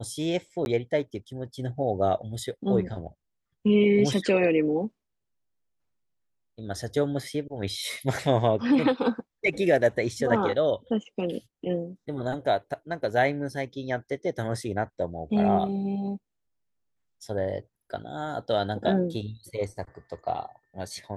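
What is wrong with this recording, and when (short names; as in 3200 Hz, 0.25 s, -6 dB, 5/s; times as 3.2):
0.65–0.66 gap 11 ms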